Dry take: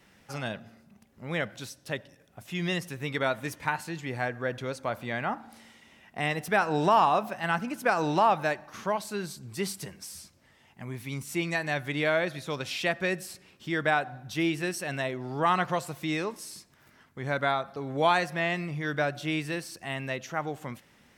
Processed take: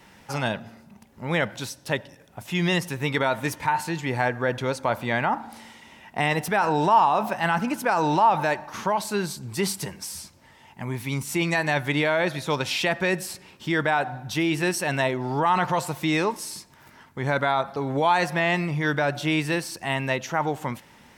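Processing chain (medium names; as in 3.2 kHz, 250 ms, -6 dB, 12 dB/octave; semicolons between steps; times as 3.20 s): peaking EQ 910 Hz +9.5 dB 0.21 oct; in parallel at +2.5 dB: compressor with a negative ratio -29 dBFS, ratio -1; on the sum: trim -2 dB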